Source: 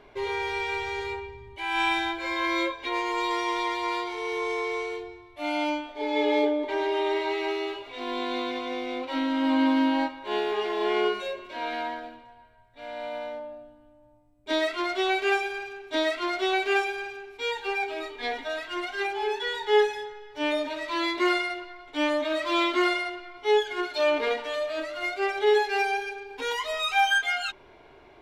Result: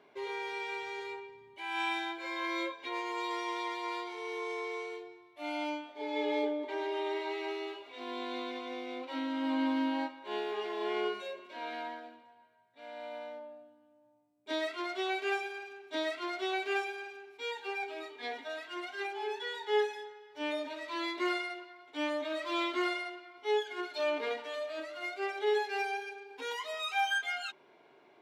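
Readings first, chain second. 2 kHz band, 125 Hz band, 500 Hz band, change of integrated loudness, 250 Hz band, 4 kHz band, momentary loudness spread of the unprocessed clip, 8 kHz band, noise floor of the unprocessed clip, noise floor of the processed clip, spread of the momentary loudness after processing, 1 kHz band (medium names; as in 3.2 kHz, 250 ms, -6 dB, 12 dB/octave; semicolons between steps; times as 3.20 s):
-8.5 dB, no reading, -8.5 dB, -8.5 dB, -8.5 dB, -8.5 dB, 12 LU, -8.5 dB, -53 dBFS, -62 dBFS, 12 LU, -8.5 dB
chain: high-pass 160 Hz 24 dB/octave; trim -8.5 dB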